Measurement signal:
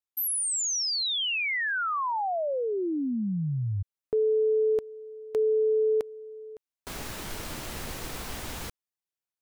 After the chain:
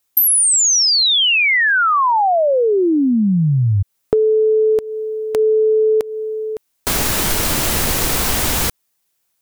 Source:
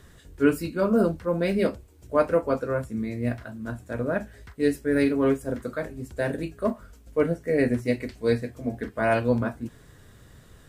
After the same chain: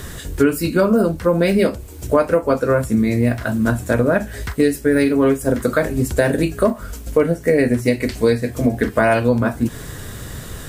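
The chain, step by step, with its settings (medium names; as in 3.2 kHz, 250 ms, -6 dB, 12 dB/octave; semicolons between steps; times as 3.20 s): treble shelf 6.5 kHz +7.5 dB; compression 6:1, threshold -32 dBFS; loudness maximiser +20 dB; trim -1 dB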